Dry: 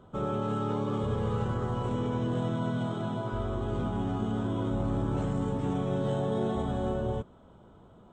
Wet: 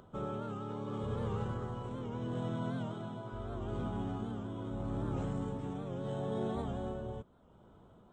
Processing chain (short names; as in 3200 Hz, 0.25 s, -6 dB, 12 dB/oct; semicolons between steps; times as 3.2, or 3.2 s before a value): upward compressor, threshold -48 dBFS; tremolo 0.77 Hz, depth 41%; record warp 78 rpm, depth 100 cents; gain -6 dB